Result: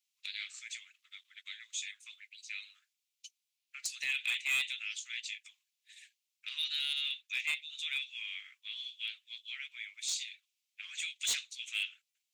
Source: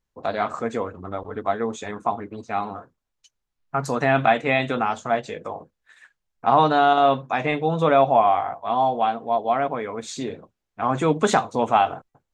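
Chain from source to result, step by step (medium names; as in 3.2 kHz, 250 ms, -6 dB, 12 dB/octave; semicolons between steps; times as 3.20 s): steep high-pass 2.3 kHz 48 dB/octave; in parallel at -3 dB: compression 6:1, threshold -48 dBFS, peak gain reduction 22 dB; on the sum: hard clipper -27 dBFS, distortion -12 dB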